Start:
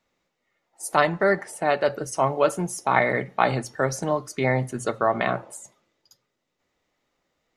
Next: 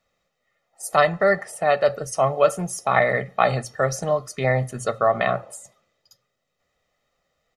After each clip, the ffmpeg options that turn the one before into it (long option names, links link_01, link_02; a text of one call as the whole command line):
ffmpeg -i in.wav -af "aecho=1:1:1.6:0.62" out.wav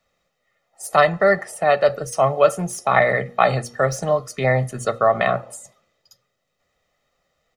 ffmpeg -i in.wav -filter_complex "[0:a]bandreject=frequency=119.5:width_type=h:width=4,bandreject=frequency=239:width_type=h:width=4,bandreject=frequency=358.5:width_type=h:width=4,bandreject=frequency=478:width_type=h:width=4,acrossover=split=240|3400[link_01][link_02][link_03];[link_03]asoftclip=type=tanh:threshold=-28dB[link_04];[link_01][link_02][link_04]amix=inputs=3:normalize=0,volume=2.5dB" out.wav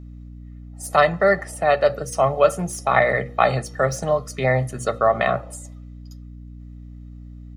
ffmpeg -i in.wav -af "aeval=exprs='val(0)+0.0158*(sin(2*PI*60*n/s)+sin(2*PI*2*60*n/s)/2+sin(2*PI*3*60*n/s)/3+sin(2*PI*4*60*n/s)/4+sin(2*PI*5*60*n/s)/5)':channel_layout=same,volume=-1dB" out.wav